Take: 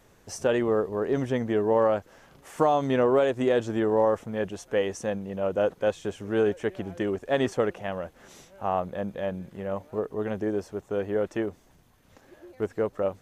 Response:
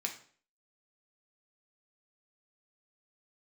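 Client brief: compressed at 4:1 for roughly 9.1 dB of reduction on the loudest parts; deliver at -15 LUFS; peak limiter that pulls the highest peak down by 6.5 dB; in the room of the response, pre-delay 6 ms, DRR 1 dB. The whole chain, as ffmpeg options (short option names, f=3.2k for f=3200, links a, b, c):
-filter_complex "[0:a]acompressor=threshold=-29dB:ratio=4,alimiter=limit=-24dB:level=0:latency=1,asplit=2[a][b];[1:a]atrim=start_sample=2205,adelay=6[c];[b][c]afir=irnorm=-1:irlink=0,volume=-2.5dB[d];[a][d]amix=inputs=2:normalize=0,volume=18.5dB"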